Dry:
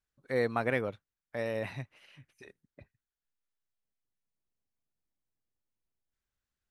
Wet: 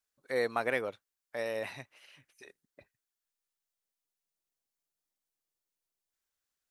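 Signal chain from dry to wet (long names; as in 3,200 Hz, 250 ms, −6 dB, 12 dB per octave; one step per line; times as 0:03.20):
bass and treble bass −13 dB, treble +6 dB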